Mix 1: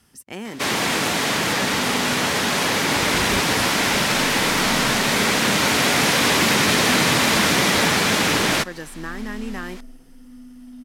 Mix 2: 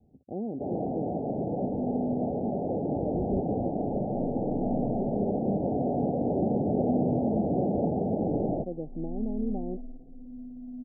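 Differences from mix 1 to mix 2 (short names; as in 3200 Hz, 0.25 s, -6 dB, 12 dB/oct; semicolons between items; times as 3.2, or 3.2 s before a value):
first sound -4.5 dB; master: add steep low-pass 780 Hz 96 dB/oct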